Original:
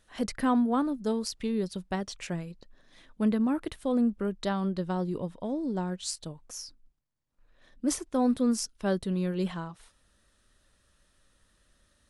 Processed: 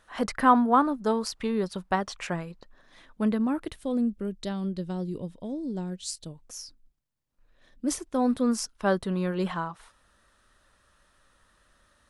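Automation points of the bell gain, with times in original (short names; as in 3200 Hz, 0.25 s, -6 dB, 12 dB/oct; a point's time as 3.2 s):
bell 1100 Hz 1.8 oct
2.37 s +12 dB
3.55 s +1.5 dB
4.16 s -9.5 dB
6.06 s -9.5 dB
6.64 s -1 dB
7.96 s -1 dB
8.71 s +10 dB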